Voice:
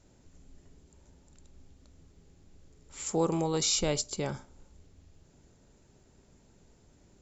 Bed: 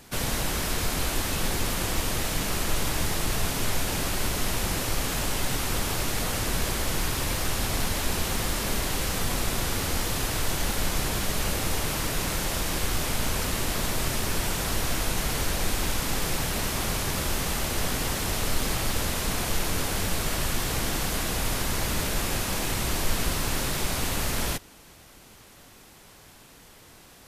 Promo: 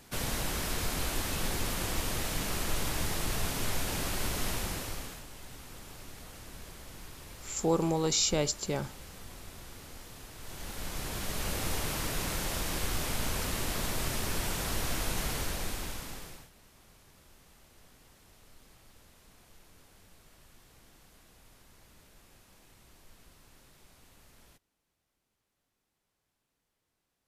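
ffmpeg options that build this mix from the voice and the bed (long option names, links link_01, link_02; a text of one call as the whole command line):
ffmpeg -i stem1.wav -i stem2.wav -filter_complex "[0:a]adelay=4500,volume=0.5dB[link_01];[1:a]volume=9.5dB,afade=type=out:start_time=4.49:duration=0.75:silence=0.177828,afade=type=in:start_time=10.37:duration=1.3:silence=0.177828,afade=type=out:start_time=15.24:duration=1.26:silence=0.0501187[link_02];[link_01][link_02]amix=inputs=2:normalize=0" out.wav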